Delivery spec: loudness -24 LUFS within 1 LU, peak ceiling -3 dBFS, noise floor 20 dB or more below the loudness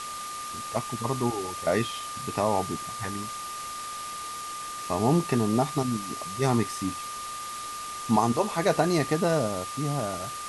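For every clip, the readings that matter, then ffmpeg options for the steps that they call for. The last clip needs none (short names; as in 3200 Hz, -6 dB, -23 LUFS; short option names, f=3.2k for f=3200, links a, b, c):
steady tone 1200 Hz; tone level -35 dBFS; noise floor -37 dBFS; noise floor target -49 dBFS; loudness -28.5 LUFS; peak -9.0 dBFS; loudness target -24.0 LUFS
-> -af "bandreject=f=1.2k:w=30"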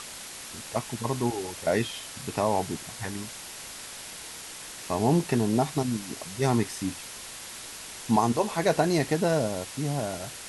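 steady tone none; noise floor -42 dBFS; noise floor target -49 dBFS
-> -af "afftdn=nr=7:nf=-42"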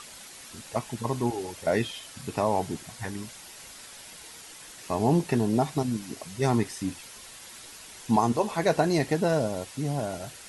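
noise floor -46 dBFS; noise floor target -48 dBFS
-> -af "afftdn=nr=6:nf=-46"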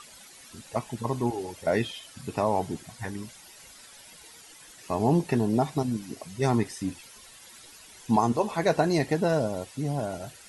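noise floor -50 dBFS; loudness -28.0 LUFS; peak -10.0 dBFS; loudness target -24.0 LUFS
-> -af "volume=4dB"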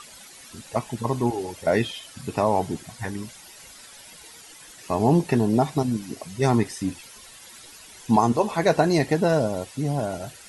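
loudness -24.0 LUFS; peak -6.0 dBFS; noise floor -46 dBFS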